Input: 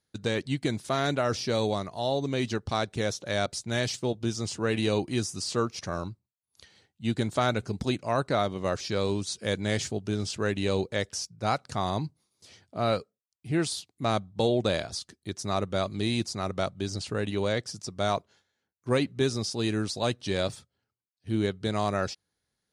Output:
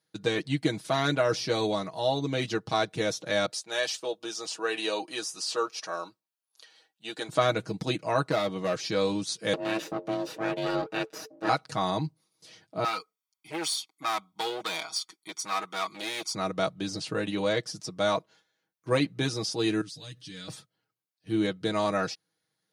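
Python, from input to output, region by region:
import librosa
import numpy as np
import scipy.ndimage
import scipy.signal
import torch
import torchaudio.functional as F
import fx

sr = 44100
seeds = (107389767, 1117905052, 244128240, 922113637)

y = fx.chain(x, sr, fx.highpass(hz=540.0, slope=12),
    fx.notch(hz=2100.0, q=10.0), at=(3.51, 7.29))
y = fx.chain(y, sr, fx.highpass(hz=43.0, slope=12),
    fx.clip_hard(threshold_db=-22.0), at=(8.24, 8.77))
y = fx.chain(y, sr, fx.lower_of_two(delay_ms=0.93),
    fx.high_shelf(hz=6200.0, db=-11.0),
    fx.ring_mod(carrier_hz=440.0), at=(9.53, 11.49))
y = fx.chain(y, sr, fx.comb(ms=0.9, depth=1.0),
    fx.clip_hard(threshold_db=-24.0),
    fx.highpass(hz=560.0, slope=12), at=(12.84, 16.35))
y = fx.chain(y, sr, fx.tone_stack(knobs='6-0-2'),
    fx.comb(ms=6.9, depth=0.97),
    fx.env_flatten(amount_pct=50), at=(19.81, 20.48))
y = scipy.signal.sosfilt(scipy.signal.bessel(2, 160.0, 'highpass', norm='mag', fs=sr, output='sos'), y)
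y = fx.peak_eq(y, sr, hz=7600.0, db=-4.0, octaves=0.53)
y = y + 0.77 * np.pad(y, (int(6.3 * sr / 1000.0), 0))[:len(y)]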